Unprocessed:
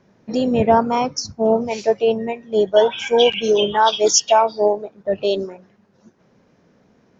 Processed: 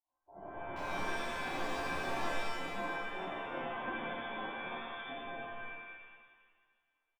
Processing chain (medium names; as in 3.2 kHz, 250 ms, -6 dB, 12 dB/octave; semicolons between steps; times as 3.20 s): on a send: frequency-shifting echo 214 ms, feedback 54%, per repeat -75 Hz, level -23 dB; on the sum: spectral gate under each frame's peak -25 dB weak; brick-wall FIR low-pass 1.1 kHz; 0.76–2.31 s: waveshaping leveller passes 5; in parallel at +2.5 dB: compressor with a negative ratio -36 dBFS; on the sum: bass shelf 95 Hz -10 dB; feedback comb 230 Hz, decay 0.73 s, harmonics odd, mix 90%; pitch-shifted reverb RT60 1.4 s, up +7 st, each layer -2 dB, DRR -7.5 dB; trim -2.5 dB